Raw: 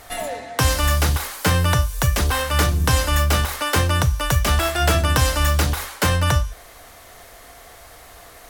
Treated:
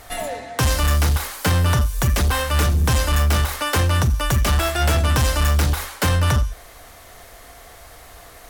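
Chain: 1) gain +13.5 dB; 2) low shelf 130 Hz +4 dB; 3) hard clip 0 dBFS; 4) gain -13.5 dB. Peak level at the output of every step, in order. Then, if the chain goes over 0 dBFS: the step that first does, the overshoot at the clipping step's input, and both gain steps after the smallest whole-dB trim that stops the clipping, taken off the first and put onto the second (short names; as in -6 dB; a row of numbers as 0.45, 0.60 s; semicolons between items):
+8.0, +9.5, 0.0, -13.5 dBFS; step 1, 9.5 dB; step 1 +3.5 dB, step 4 -3.5 dB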